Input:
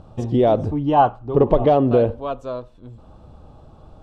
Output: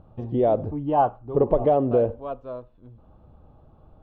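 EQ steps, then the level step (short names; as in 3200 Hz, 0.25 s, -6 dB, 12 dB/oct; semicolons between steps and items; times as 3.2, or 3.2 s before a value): dynamic EQ 560 Hz, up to +5 dB, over -27 dBFS, Q 1.1; air absorption 380 m; -7.0 dB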